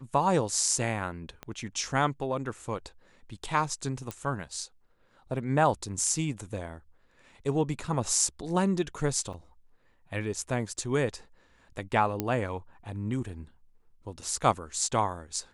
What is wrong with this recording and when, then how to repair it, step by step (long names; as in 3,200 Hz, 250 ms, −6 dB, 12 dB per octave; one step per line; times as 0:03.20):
0:01.43: click −24 dBFS
0:04.11: click −19 dBFS
0:09.33–0:09.34: drop-out 5.9 ms
0:12.20: click −14 dBFS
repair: click removal
repair the gap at 0:09.33, 5.9 ms